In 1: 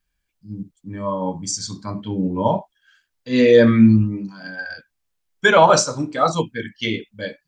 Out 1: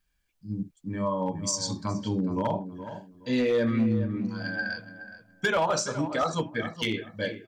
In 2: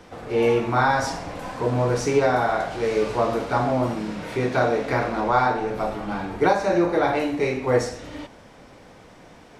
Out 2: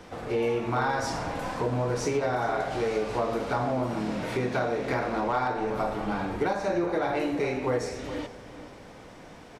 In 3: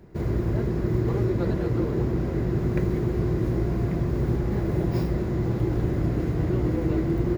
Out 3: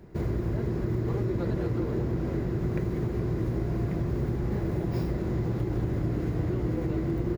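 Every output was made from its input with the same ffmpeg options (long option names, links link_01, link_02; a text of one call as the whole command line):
ffmpeg -i in.wav -filter_complex "[0:a]acompressor=threshold=-26dB:ratio=3,asoftclip=type=hard:threshold=-19dB,asplit=2[link_01][link_02];[link_02]adelay=420,lowpass=frequency=2000:poles=1,volume=-11dB,asplit=2[link_03][link_04];[link_04]adelay=420,lowpass=frequency=2000:poles=1,volume=0.23,asplit=2[link_05][link_06];[link_06]adelay=420,lowpass=frequency=2000:poles=1,volume=0.23[link_07];[link_01][link_03][link_05][link_07]amix=inputs=4:normalize=0" out.wav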